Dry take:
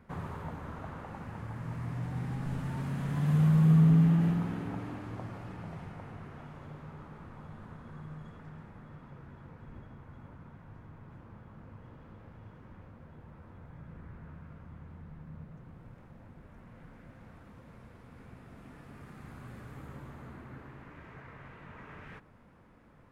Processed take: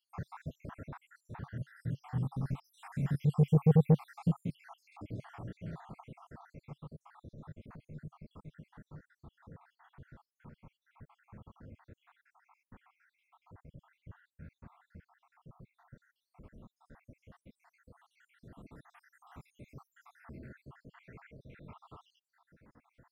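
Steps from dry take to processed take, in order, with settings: random spectral dropouts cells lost 75%; dynamic EQ 140 Hz, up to +5 dB, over -48 dBFS, Q 2.6; core saturation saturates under 270 Hz

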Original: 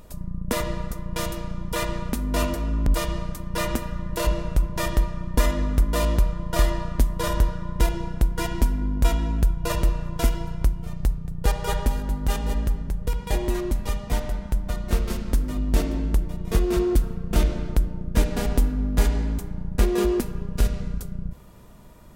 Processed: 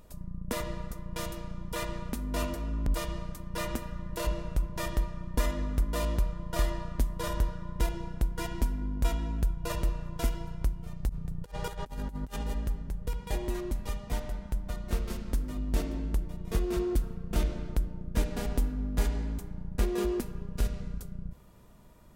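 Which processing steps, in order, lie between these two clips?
11.09–12.45 negative-ratio compressor -27 dBFS, ratio -0.5; gain -8 dB

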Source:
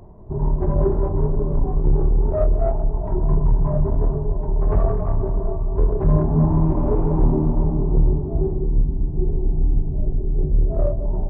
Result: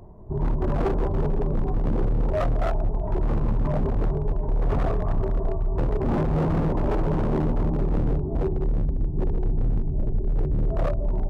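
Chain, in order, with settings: wavefolder -15 dBFS; gain -2 dB

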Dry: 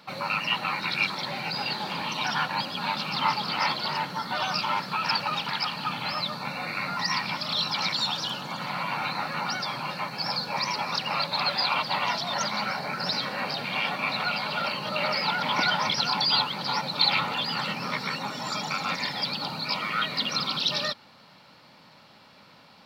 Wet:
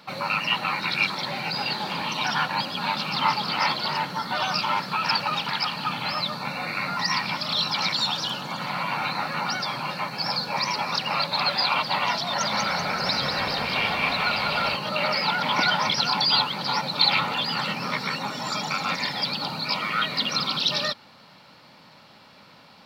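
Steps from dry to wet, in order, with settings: 12.27–14.76 frequency-shifting echo 0.192 s, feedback 54%, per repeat -33 Hz, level -4.5 dB; gain +2.5 dB

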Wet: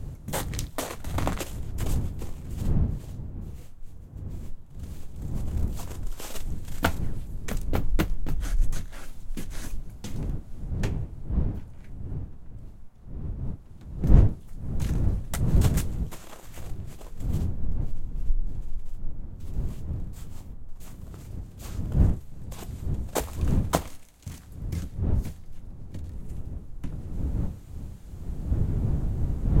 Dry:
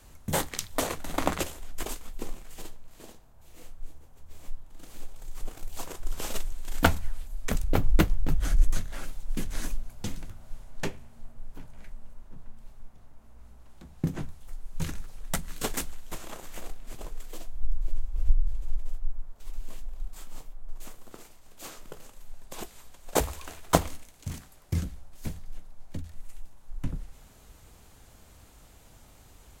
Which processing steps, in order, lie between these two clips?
wind noise 100 Hz -26 dBFS; gain -3 dB

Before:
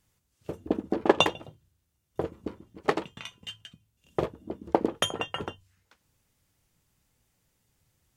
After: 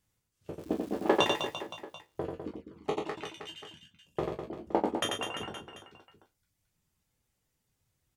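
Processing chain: spectral trails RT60 0.35 s; reverb removal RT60 1.2 s; 0.57–1.46 crackle 570/s -37 dBFS; reverse bouncing-ball echo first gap 90 ms, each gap 1.25×, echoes 5; 2.51–3.05 envelope flanger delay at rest 2.7 ms, full sweep at -31 dBFS; gain -7 dB

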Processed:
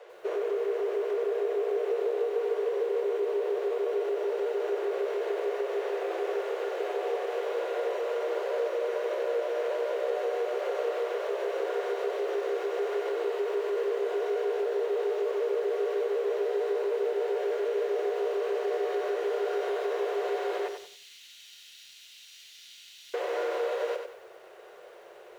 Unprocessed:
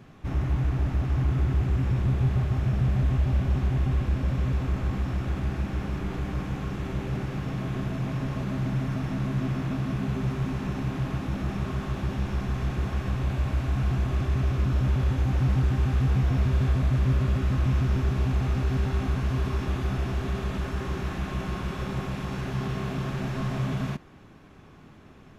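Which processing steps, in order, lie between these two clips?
median filter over 5 samples; frequency shift +340 Hz; 20.68–23.14 inverse Chebyshev high-pass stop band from 750 Hz, stop band 70 dB; compressor 6:1, threshold -27 dBFS, peak gain reduction 8 dB; lo-fi delay 93 ms, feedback 35%, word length 10-bit, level -6.5 dB

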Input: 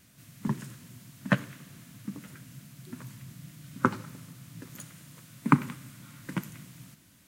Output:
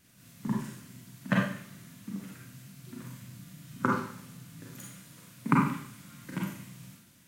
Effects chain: Schroeder reverb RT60 0.54 s, combs from 32 ms, DRR -3 dB; gain -5 dB

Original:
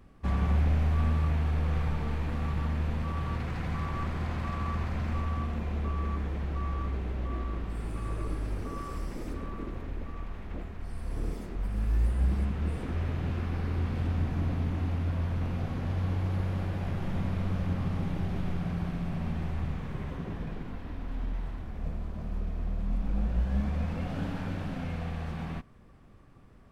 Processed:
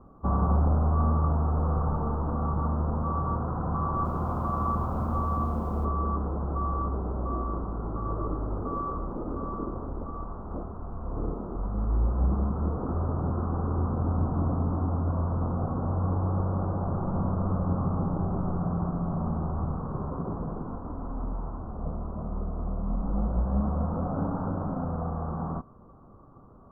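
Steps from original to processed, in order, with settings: steep low-pass 1300 Hz 72 dB/oct; tilt +2 dB/oct; 3.74–5.85 lo-fi delay 0.309 s, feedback 55%, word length 10-bit, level -14 dB; gain +9 dB

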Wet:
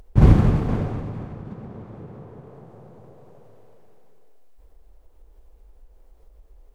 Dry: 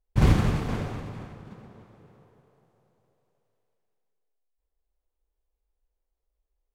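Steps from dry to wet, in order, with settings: tilt shelf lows +7 dB, about 1400 Hz; upward compressor, threshold -29 dBFS

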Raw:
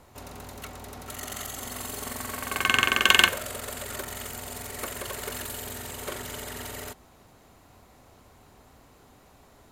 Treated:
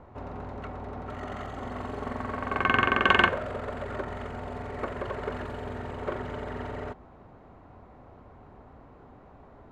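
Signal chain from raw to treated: LPF 1300 Hz 12 dB/oct; gain +5 dB

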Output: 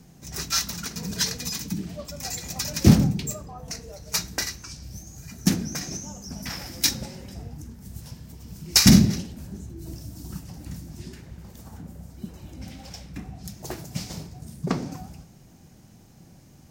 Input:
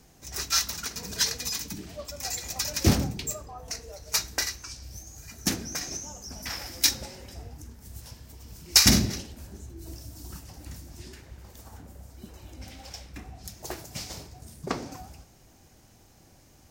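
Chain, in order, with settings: bell 170 Hz +13 dB 1.2 oct

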